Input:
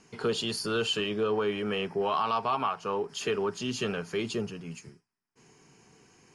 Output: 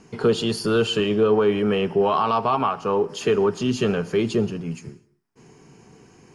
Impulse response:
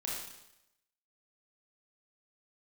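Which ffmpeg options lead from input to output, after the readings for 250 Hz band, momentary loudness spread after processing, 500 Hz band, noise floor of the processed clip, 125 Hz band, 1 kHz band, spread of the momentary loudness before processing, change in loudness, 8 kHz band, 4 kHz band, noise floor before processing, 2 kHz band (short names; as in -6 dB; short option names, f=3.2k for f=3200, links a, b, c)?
+11.0 dB, 5 LU, +10.0 dB, -59 dBFS, +11.5 dB, +7.0 dB, 6 LU, +8.5 dB, +2.5 dB, +3.5 dB, -78 dBFS, +4.5 dB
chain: -filter_complex "[0:a]tiltshelf=f=970:g=4.5,asplit=2[a][b];[1:a]atrim=start_sample=2205,afade=t=out:st=0.23:d=0.01,atrim=end_sample=10584,adelay=79[c];[b][c]afir=irnorm=-1:irlink=0,volume=-21.5dB[d];[a][d]amix=inputs=2:normalize=0,volume=7dB"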